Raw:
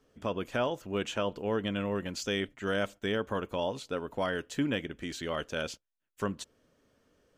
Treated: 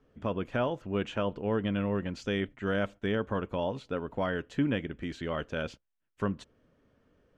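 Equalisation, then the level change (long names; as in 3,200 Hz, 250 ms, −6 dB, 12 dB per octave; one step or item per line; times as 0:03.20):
low-pass filter 11,000 Hz
bass and treble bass +5 dB, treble −14 dB
0.0 dB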